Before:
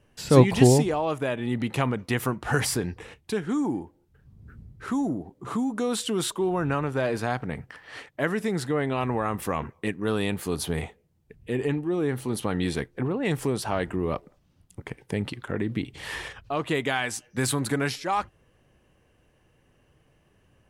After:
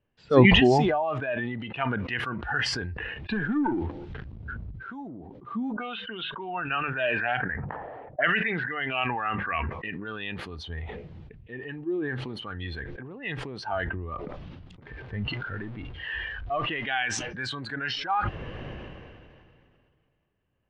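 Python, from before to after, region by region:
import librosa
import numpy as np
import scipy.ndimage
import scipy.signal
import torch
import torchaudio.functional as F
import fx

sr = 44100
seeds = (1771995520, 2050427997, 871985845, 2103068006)

y = fx.chain(x, sr, fx.leveller(passes=2),
    fx.band_squash(depth_pct=70), at=(2.96, 4.71))
y = fx.chain(y, sr, fx.hum_notches(base_hz=50, count=4),
    fx.envelope_lowpass(base_hz=550.0, top_hz=2900.0, q=3.5, full_db=-22.5, direction='up'), at=(5.73, 9.65))
y = fx.chain(y, sr, fx.zero_step(step_db=-30.0),
    fx.high_shelf(hz=4400.0, db=-9.0), at=(14.82, 16.87))
y = scipy.signal.sosfilt(scipy.signal.butter(4, 3700.0, 'lowpass', fs=sr, output='sos'), y)
y = fx.noise_reduce_blind(y, sr, reduce_db=15)
y = fx.sustainer(y, sr, db_per_s=25.0)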